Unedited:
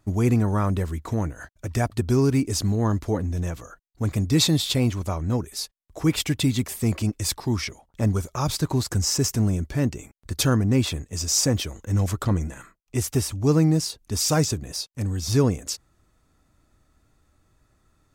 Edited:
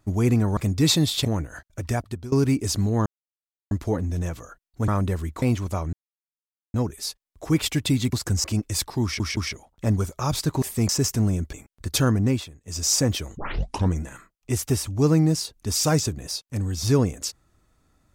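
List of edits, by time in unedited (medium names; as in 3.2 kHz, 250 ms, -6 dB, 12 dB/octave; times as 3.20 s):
0.57–1.11 s: swap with 4.09–4.77 s
1.69–2.18 s: fade out, to -20.5 dB
2.92 s: insert silence 0.65 s
5.28 s: insert silence 0.81 s
6.67–6.94 s: swap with 8.78–9.09 s
7.53 s: stutter 0.17 s, 3 plays
9.73–9.98 s: delete
10.70–11.28 s: dip -15.5 dB, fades 0.24 s
11.82 s: tape start 0.54 s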